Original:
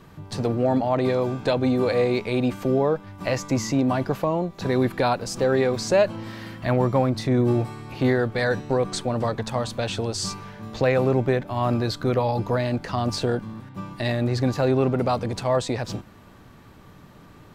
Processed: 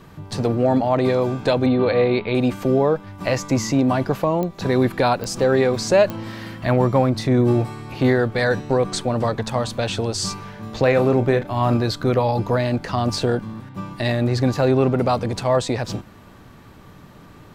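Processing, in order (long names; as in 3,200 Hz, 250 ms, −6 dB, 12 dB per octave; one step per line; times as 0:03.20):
0:01.66–0:02.35: Butterworth low-pass 4,300 Hz 72 dB per octave
0:10.82–0:11.77: double-tracking delay 34 ms −11 dB
digital clicks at 0:04.43/0:05.24/0:06.10, −17 dBFS
level +3.5 dB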